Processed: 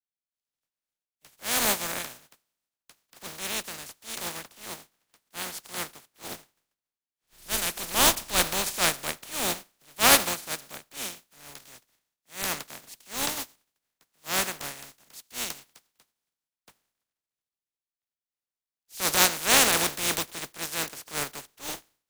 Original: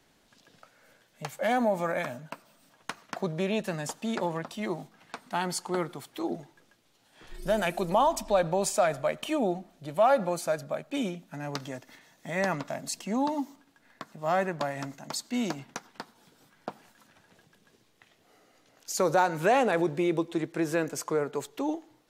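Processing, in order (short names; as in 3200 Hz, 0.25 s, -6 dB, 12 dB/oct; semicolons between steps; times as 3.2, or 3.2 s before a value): spectral contrast lowered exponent 0.21; transient shaper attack -7 dB, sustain -2 dB; three-band expander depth 100%; gain -1.5 dB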